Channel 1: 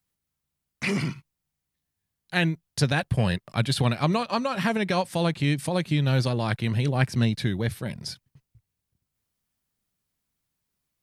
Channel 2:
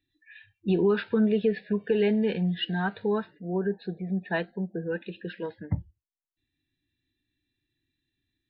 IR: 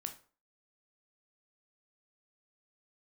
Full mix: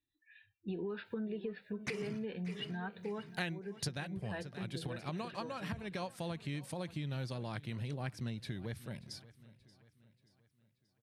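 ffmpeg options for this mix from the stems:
-filter_complex "[0:a]adelay=1050,volume=-0.5dB,afade=type=out:start_time=3.63:duration=0.49:silence=0.237137,asplit=2[link_01][link_02];[link_02]volume=-21.5dB[link_03];[1:a]volume=-11.5dB,asplit=3[link_04][link_05][link_06];[link_05]volume=-16dB[link_07];[link_06]apad=whole_len=532431[link_08];[link_01][link_08]sidechaincompress=threshold=-44dB:ratio=8:attack=16:release=216[link_09];[link_03][link_07]amix=inputs=2:normalize=0,aecho=0:1:581|1162|1743|2324|2905|3486:1|0.46|0.212|0.0973|0.0448|0.0206[link_10];[link_09][link_04][link_10]amix=inputs=3:normalize=0,acompressor=threshold=-36dB:ratio=6"

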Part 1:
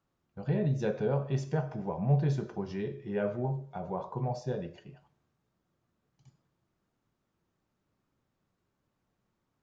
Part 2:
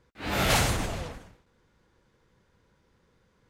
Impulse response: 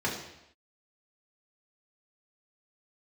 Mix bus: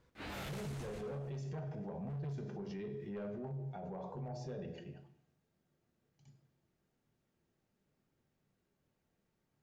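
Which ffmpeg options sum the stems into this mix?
-filter_complex "[0:a]equalizer=frequency=1100:width_type=o:width=0.77:gain=-7,bandreject=frequency=60:width_type=h:width=6,bandreject=frequency=120:width_type=h:width=6,bandreject=frequency=180:width_type=h:width=6,volume=26dB,asoftclip=hard,volume=-26dB,volume=-2.5dB,asplit=3[link_01][link_02][link_03];[link_02]volume=-15dB[link_04];[1:a]alimiter=limit=-18.5dB:level=0:latency=1,volume=-5.5dB,asplit=2[link_05][link_06];[link_06]volume=-11dB[link_07];[link_03]apad=whole_len=153978[link_08];[link_05][link_08]sidechaincompress=threshold=-35dB:ratio=8:attack=16:release=493[link_09];[2:a]atrim=start_sample=2205[link_10];[link_04][link_10]afir=irnorm=-1:irlink=0[link_11];[link_07]aecho=0:1:108:1[link_12];[link_01][link_09][link_11][link_12]amix=inputs=4:normalize=0,asoftclip=type=tanh:threshold=-26dB,alimiter=level_in=13.5dB:limit=-24dB:level=0:latency=1:release=41,volume=-13.5dB"

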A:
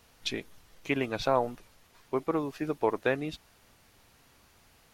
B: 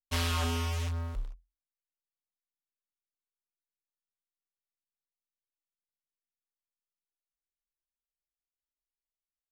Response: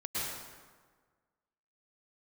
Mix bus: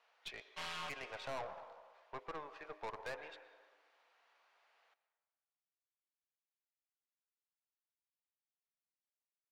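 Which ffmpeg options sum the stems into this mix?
-filter_complex "[0:a]lowpass=2800,bandreject=frequency=102.4:width_type=h:width=4,bandreject=frequency=204.8:width_type=h:width=4,bandreject=frequency=307.2:width_type=h:width=4,bandreject=frequency=409.6:width_type=h:width=4,bandreject=frequency=512:width_type=h:width=4,bandreject=frequency=614.4:width_type=h:width=4,volume=-6dB,asplit=3[link_01][link_02][link_03];[link_02]volume=-18.5dB[link_04];[1:a]lowpass=3300,adelay=450,volume=-3.5dB,asplit=2[link_05][link_06];[link_06]volume=-22.5dB[link_07];[link_03]apad=whole_len=439324[link_08];[link_05][link_08]sidechaincompress=threshold=-48dB:ratio=8:attack=5.1:release=204[link_09];[2:a]atrim=start_sample=2205[link_10];[link_04][link_07]amix=inputs=2:normalize=0[link_11];[link_11][link_10]afir=irnorm=-1:irlink=0[link_12];[link_01][link_09][link_12]amix=inputs=3:normalize=0,highpass=frequency=570:width=0.5412,highpass=frequency=570:width=1.3066,aeval=exprs='(tanh(89.1*val(0)+0.45)-tanh(0.45))/89.1':channel_layout=same"

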